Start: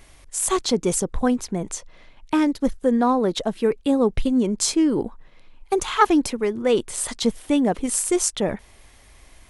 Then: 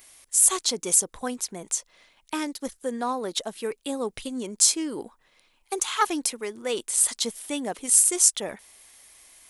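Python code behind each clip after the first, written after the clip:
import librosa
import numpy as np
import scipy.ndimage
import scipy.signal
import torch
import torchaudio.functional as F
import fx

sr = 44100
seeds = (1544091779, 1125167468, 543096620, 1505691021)

y = fx.riaa(x, sr, side='recording')
y = F.gain(torch.from_numpy(y), -6.5).numpy()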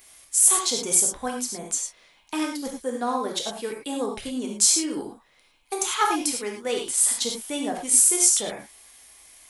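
y = fx.rev_gated(x, sr, seeds[0], gate_ms=130, shape='flat', drr_db=0.5)
y = F.gain(torch.from_numpy(y), -1.0).numpy()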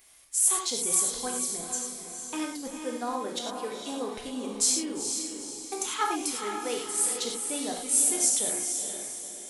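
y = fx.echo_diffused(x, sr, ms=461, feedback_pct=44, wet_db=-6)
y = F.gain(torch.from_numpy(y), -6.0).numpy()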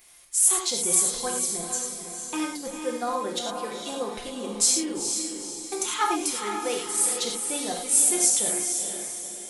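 y = x + 0.52 * np.pad(x, (int(5.7 * sr / 1000.0), 0))[:len(x)]
y = F.gain(torch.from_numpy(y), 2.5).numpy()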